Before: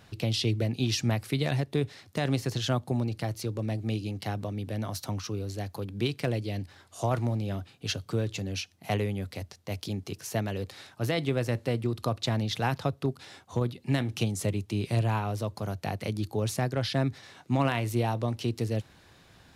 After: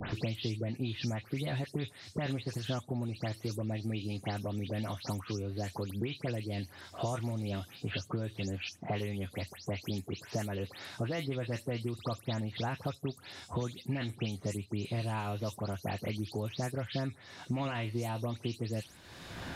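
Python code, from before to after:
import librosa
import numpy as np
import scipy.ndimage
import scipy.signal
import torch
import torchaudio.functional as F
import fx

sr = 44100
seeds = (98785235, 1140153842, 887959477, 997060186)

y = fx.spec_delay(x, sr, highs='late', ms=149)
y = fx.high_shelf(y, sr, hz=9000.0, db=-3.5)
y = fx.band_squash(y, sr, depth_pct=100)
y = F.gain(torch.from_numpy(y), -6.5).numpy()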